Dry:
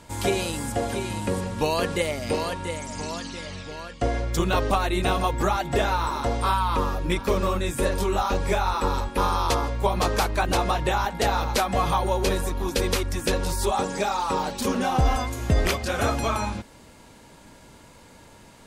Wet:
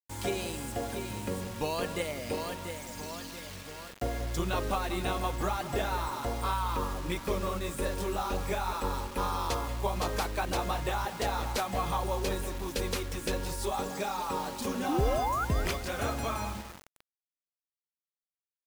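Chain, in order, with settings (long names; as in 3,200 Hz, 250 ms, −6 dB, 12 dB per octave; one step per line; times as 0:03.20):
sound drawn into the spectrogram rise, 0:14.88–0:15.45, 270–1,500 Hz −22 dBFS
bucket-brigade delay 187 ms, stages 4,096, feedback 36%, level −12 dB
bit-depth reduction 6 bits, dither none
level −8.5 dB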